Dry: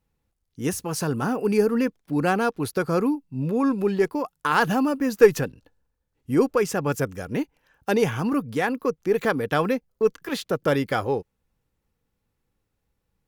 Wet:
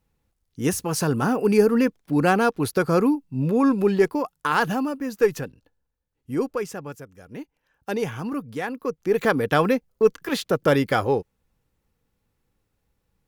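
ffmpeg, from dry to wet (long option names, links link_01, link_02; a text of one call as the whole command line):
ffmpeg -i in.wav -af "volume=23dB,afade=type=out:start_time=3.97:duration=1.02:silence=0.398107,afade=type=out:start_time=6.53:duration=0.52:silence=0.251189,afade=type=in:start_time=7.05:duration=0.87:silence=0.251189,afade=type=in:start_time=8.77:duration=0.58:silence=0.398107" out.wav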